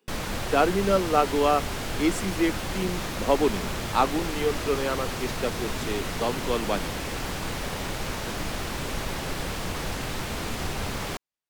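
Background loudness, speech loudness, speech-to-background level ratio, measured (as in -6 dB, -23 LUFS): -31.5 LUFS, -27.0 LUFS, 4.5 dB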